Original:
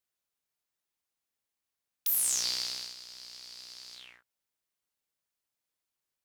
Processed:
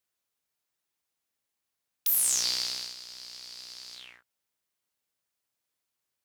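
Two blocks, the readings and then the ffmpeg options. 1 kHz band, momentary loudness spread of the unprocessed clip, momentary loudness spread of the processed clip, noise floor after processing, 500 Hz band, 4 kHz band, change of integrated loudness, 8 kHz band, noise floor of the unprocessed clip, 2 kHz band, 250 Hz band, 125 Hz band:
+3.0 dB, 19 LU, 19 LU, -85 dBFS, +3.0 dB, +3.0 dB, +3.0 dB, +3.0 dB, under -85 dBFS, +3.0 dB, +3.0 dB, n/a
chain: -af "highpass=44,volume=3dB"

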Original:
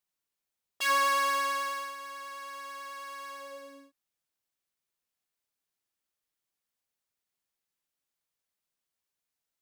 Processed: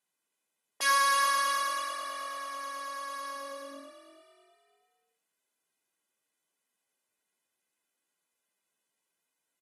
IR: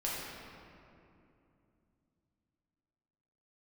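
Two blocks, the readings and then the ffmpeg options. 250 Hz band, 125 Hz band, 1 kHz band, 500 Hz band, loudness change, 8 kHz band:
0.0 dB, n/a, +1.5 dB, -1.5 dB, +1.0 dB, +5.0 dB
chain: -filter_complex "[0:a]highpass=230,equalizer=f=4.8k:t=o:w=0.82:g=-6.5,asplit=5[a][b][c][d][e];[b]adelay=322,afreqshift=45,volume=-11dB[f];[c]adelay=644,afreqshift=90,volume=-18.5dB[g];[d]adelay=966,afreqshift=135,volume=-26.1dB[h];[e]adelay=1288,afreqshift=180,volume=-33.6dB[i];[a][f][g][h][i]amix=inputs=5:normalize=0,acrossover=split=1200[j][k];[j]acompressor=threshold=-45dB:ratio=6[l];[k]aecho=1:1:2:0.97[m];[l][m]amix=inputs=2:normalize=0,lowshelf=f=330:g=5,volume=3dB" -ar 44100 -c:a aac -b:a 32k

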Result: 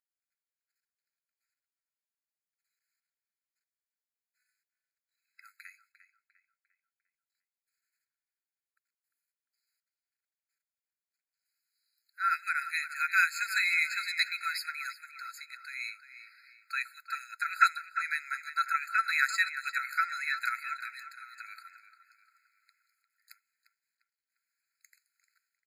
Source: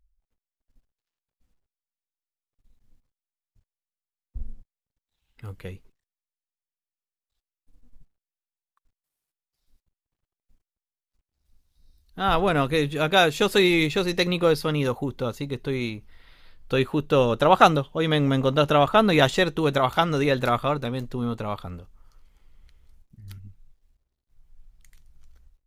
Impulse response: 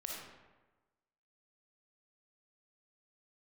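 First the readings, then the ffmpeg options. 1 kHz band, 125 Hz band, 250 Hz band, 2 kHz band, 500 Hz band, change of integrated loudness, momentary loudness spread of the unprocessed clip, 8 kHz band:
-9.0 dB, under -40 dB, under -40 dB, -0.5 dB, under -40 dB, -8.0 dB, 13 LU, -4.5 dB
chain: -filter_complex "[0:a]equalizer=f=3.4k:w=2.7:g=-4,asplit=2[a][b];[b]adelay=350,lowpass=f=3.3k:p=1,volume=-11dB,asplit=2[c][d];[d]adelay=350,lowpass=f=3.3k:p=1,volume=0.47,asplit=2[e][f];[f]adelay=350,lowpass=f=3.3k:p=1,volume=0.47,asplit=2[g][h];[h]adelay=350,lowpass=f=3.3k:p=1,volume=0.47,asplit=2[i][j];[j]adelay=350,lowpass=f=3.3k:p=1,volume=0.47[k];[a][c][e][g][i][k]amix=inputs=6:normalize=0,afftfilt=real='re*eq(mod(floor(b*sr/1024/1300),2),1)':imag='im*eq(mod(floor(b*sr/1024/1300),2),1)':win_size=1024:overlap=0.75"

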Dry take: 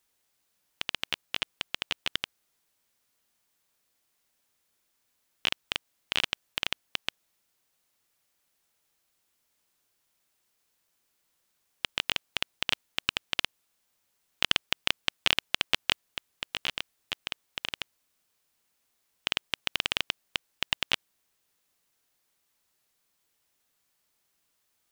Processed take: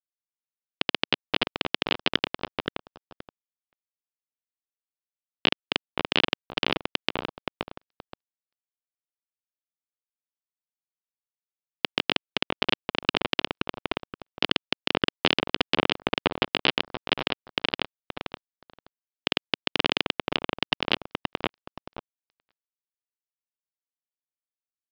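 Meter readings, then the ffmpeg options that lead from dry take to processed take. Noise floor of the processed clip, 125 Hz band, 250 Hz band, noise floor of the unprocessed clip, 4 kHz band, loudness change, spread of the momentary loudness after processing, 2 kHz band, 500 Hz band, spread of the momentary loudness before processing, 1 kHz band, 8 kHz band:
under -85 dBFS, +11.5 dB, +16.5 dB, -76 dBFS, +4.0 dB, +4.0 dB, 12 LU, +4.5 dB, +15.0 dB, 11 LU, +9.5 dB, under -10 dB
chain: -filter_complex "[0:a]asplit=2[a][b];[b]adelay=524,lowpass=f=820:p=1,volume=-18dB,asplit=2[c][d];[d]adelay=524,lowpass=f=820:p=1,volume=0.48,asplit=2[e][f];[f]adelay=524,lowpass=f=820:p=1,volume=0.48,asplit=2[g][h];[h]adelay=524,lowpass=f=820:p=1,volume=0.48[i];[a][c][e][g][i]amix=inputs=5:normalize=0,acrossover=split=1900[j][k];[j]acrusher=bits=3:mode=log:mix=0:aa=0.000001[l];[l][k]amix=inputs=2:normalize=0,equalizer=f=280:t=o:w=2.9:g=13,aresample=11025,aeval=exprs='sgn(val(0))*max(abs(val(0))-0.00335,0)':c=same,aresample=44100,lowshelf=f=140:g=-7,alimiter=level_in=25.5dB:limit=-1dB:release=50:level=0:latency=1,volume=-1dB"

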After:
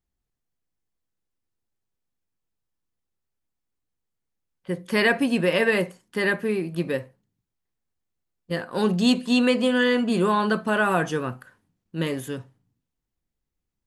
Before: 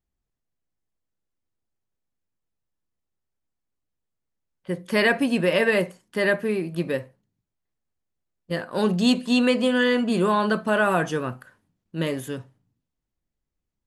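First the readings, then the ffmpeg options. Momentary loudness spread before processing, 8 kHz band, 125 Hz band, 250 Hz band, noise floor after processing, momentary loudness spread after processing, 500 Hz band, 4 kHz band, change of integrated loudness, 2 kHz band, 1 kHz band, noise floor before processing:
12 LU, 0.0 dB, 0.0 dB, 0.0 dB, -83 dBFS, 12 LU, -1.0 dB, 0.0 dB, -0.5 dB, 0.0 dB, 0.0 dB, -83 dBFS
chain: -af "bandreject=f=610:w=12"

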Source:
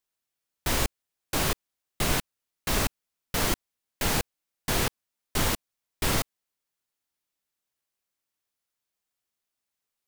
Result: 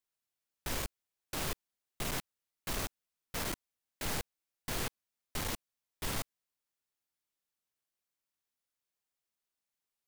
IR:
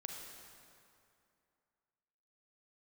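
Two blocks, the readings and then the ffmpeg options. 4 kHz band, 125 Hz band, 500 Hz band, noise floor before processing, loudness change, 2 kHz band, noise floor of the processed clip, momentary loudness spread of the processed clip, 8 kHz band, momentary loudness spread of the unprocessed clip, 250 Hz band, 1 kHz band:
-10.5 dB, -11.5 dB, -11.0 dB, under -85 dBFS, -10.5 dB, -10.5 dB, under -85 dBFS, 8 LU, -10.0 dB, 7 LU, -11.0 dB, -11.0 dB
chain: -af "aeval=exprs='(tanh(28.2*val(0)+0.4)-tanh(0.4))/28.2':c=same,volume=-4dB"

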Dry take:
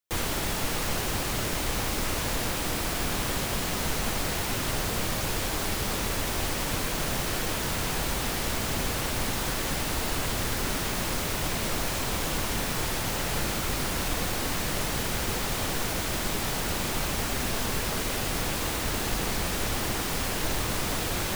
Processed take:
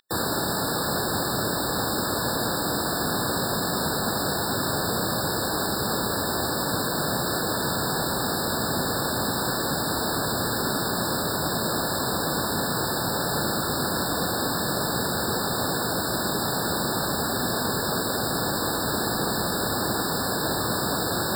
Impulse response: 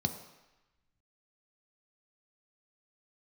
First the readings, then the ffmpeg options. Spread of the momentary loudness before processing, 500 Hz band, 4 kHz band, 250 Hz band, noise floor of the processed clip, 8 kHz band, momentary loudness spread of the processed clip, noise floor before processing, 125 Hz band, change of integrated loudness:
0 LU, +6.0 dB, +3.0 dB, +5.5 dB, -27 dBFS, +1.5 dB, 0 LU, -30 dBFS, +1.5 dB, +3.5 dB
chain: -af "highpass=130,aeval=exprs='val(0)+0.00708*sin(2*PI*3200*n/s)':c=same,afftfilt=real='re*eq(mod(floor(b*sr/1024/1800),2),0)':imag='im*eq(mod(floor(b*sr/1024/1800),2),0)':win_size=1024:overlap=0.75,volume=6dB"

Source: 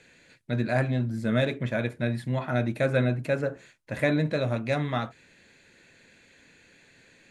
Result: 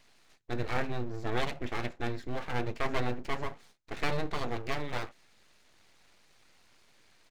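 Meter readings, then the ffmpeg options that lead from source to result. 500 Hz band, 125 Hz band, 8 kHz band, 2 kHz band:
-9.0 dB, -11.5 dB, n/a, -5.5 dB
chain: -af "aresample=16000,aresample=44100,aeval=exprs='abs(val(0))':c=same,volume=-4dB"

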